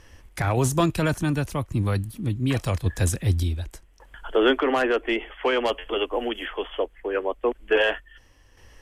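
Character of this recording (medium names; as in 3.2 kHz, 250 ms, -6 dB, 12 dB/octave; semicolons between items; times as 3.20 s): random-step tremolo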